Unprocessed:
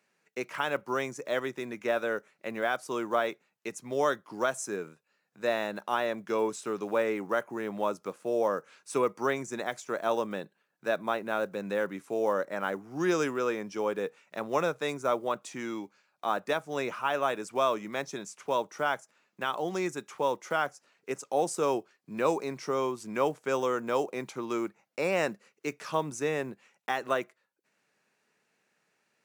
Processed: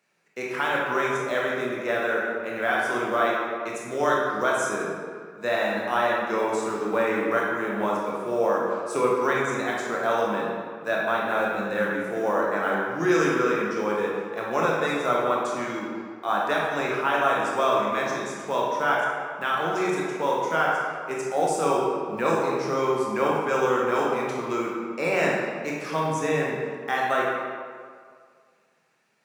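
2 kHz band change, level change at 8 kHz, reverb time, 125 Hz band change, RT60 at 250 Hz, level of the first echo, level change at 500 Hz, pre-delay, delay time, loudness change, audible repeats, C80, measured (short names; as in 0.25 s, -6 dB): +9.0 dB, +3.5 dB, 2.0 s, +7.5 dB, 1.8 s, none, +5.5 dB, 19 ms, none, +6.5 dB, none, 1.5 dB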